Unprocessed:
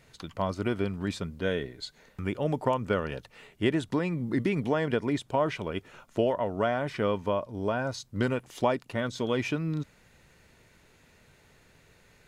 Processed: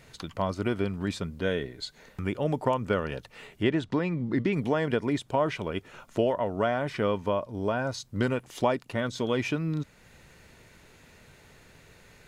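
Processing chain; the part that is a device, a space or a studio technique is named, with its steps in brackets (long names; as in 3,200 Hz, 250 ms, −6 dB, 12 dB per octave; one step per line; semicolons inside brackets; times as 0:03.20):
0:03.63–0:04.53: low-pass filter 5,100 Hz 12 dB per octave
parallel compression (in parallel at −2 dB: downward compressor, threshold −45 dBFS, peak gain reduction 22.5 dB)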